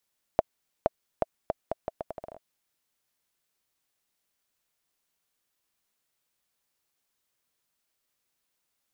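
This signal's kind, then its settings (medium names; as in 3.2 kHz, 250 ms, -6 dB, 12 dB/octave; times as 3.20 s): bouncing ball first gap 0.47 s, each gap 0.77, 647 Hz, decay 25 ms -7 dBFS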